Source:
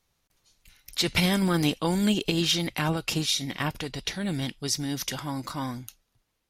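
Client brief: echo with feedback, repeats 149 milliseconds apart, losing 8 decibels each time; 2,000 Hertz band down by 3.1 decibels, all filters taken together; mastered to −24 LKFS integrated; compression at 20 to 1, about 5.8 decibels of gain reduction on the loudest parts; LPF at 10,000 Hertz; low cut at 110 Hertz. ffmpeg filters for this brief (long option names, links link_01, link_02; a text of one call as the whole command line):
ffmpeg -i in.wav -af "highpass=110,lowpass=10000,equalizer=frequency=2000:width_type=o:gain=-4,acompressor=threshold=-26dB:ratio=20,aecho=1:1:149|298|447|596|745:0.398|0.159|0.0637|0.0255|0.0102,volume=7dB" out.wav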